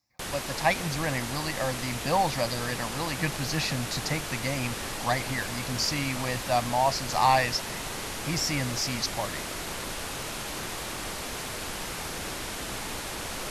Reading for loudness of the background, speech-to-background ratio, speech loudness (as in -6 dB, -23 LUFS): -34.0 LUFS, 5.0 dB, -29.0 LUFS